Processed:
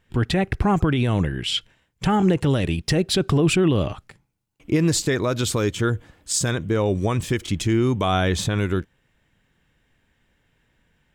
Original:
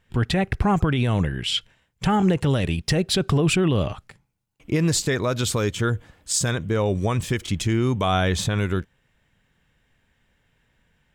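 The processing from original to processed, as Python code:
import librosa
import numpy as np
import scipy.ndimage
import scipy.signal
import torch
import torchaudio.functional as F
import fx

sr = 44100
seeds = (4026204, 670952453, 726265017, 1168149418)

y = fx.peak_eq(x, sr, hz=320.0, db=4.5, octaves=0.57)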